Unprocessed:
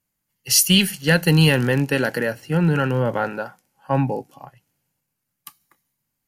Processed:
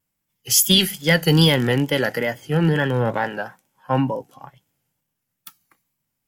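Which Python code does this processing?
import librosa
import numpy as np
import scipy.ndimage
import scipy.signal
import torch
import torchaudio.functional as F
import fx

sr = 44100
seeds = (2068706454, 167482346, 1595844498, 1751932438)

y = fx.wow_flutter(x, sr, seeds[0], rate_hz=2.1, depth_cents=72.0)
y = fx.formant_shift(y, sr, semitones=2)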